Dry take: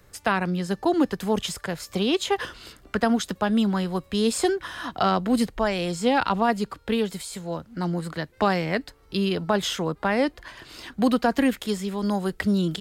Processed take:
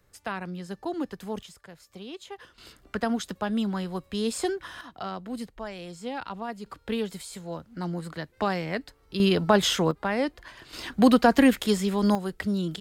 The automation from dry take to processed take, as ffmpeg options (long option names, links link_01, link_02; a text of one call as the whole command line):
ffmpeg -i in.wav -af "asetnsamples=nb_out_samples=441:pad=0,asendcmd='1.43 volume volume -17.5dB;2.58 volume volume -5.5dB;4.81 volume volume -13dB;6.66 volume volume -5dB;9.2 volume volume 3dB;9.91 volume volume -4dB;10.73 volume volume 3dB;12.15 volume volume -5dB',volume=-10dB" out.wav